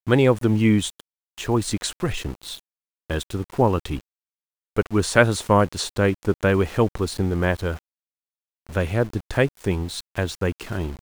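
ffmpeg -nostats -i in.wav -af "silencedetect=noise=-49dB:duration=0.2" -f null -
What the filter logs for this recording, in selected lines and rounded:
silence_start: 1.01
silence_end: 1.38 | silence_duration: 0.37
silence_start: 2.60
silence_end: 3.10 | silence_duration: 0.50
silence_start: 4.01
silence_end: 4.76 | silence_duration: 0.76
silence_start: 7.79
silence_end: 8.67 | silence_duration: 0.88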